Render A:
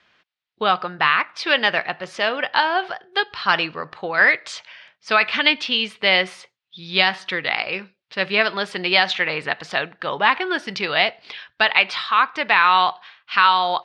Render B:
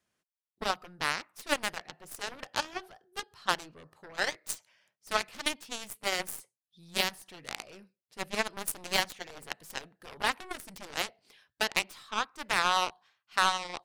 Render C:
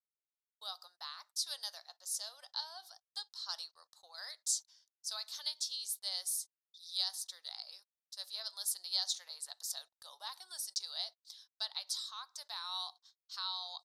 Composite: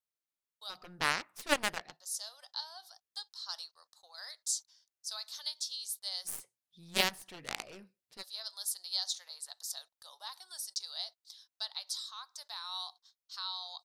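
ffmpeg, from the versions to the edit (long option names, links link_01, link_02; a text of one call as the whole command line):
ffmpeg -i take0.wav -i take1.wav -i take2.wav -filter_complex "[1:a]asplit=2[link_01][link_02];[2:a]asplit=3[link_03][link_04][link_05];[link_03]atrim=end=0.92,asetpts=PTS-STARTPTS[link_06];[link_01]atrim=start=0.68:end=2.02,asetpts=PTS-STARTPTS[link_07];[link_04]atrim=start=1.78:end=6.34,asetpts=PTS-STARTPTS[link_08];[link_02]atrim=start=6.24:end=8.23,asetpts=PTS-STARTPTS[link_09];[link_05]atrim=start=8.13,asetpts=PTS-STARTPTS[link_10];[link_06][link_07]acrossfade=duration=0.24:curve1=tri:curve2=tri[link_11];[link_11][link_08]acrossfade=duration=0.24:curve1=tri:curve2=tri[link_12];[link_12][link_09]acrossfade=duration=0.1:curve1=tri:curve2=tri[link_13];[link_13][link_10]acrossfade=duration=0.1:curve1=tri:curve2=tri" out.wav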